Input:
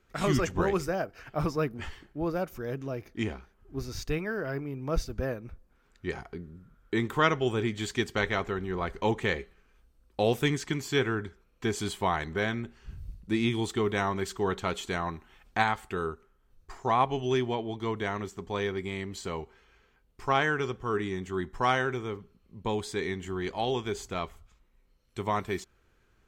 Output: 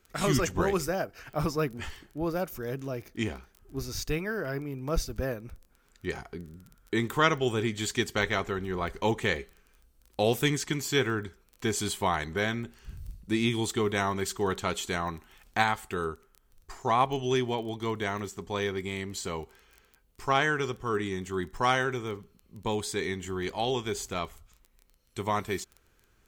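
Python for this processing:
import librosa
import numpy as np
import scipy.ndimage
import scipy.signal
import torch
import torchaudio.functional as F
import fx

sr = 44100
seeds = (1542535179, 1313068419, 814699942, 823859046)

y = fx.dmg_crackle(x, sr, seeds[0], per_s=17.0, level_db=-44.0)
y = fx.high_shelf(y, sr, hz=5400.0, db=10.0)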